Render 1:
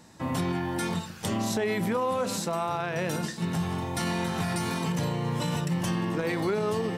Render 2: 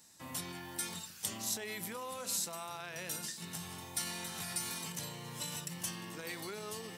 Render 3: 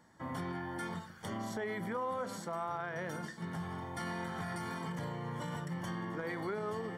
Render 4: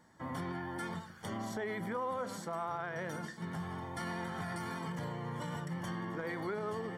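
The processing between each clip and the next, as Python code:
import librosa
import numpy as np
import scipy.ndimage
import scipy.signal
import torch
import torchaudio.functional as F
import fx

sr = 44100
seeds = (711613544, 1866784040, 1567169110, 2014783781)

y1 = scipy.signal.lfilter([1.0, -0.9], [1.0], x)
y1 = F.gain(torch.from_numpy(y1), 1.0).numpy()
y2 = scipy.signal.savgol_filter(y1, 41, 4, mode='constant')
y2 = F.gain(torch.from_numpy(y2), 7.0).numpy()
y3 = fx.vibrato(y2, sr, rate_hz=12.0, depth_cents=26.0)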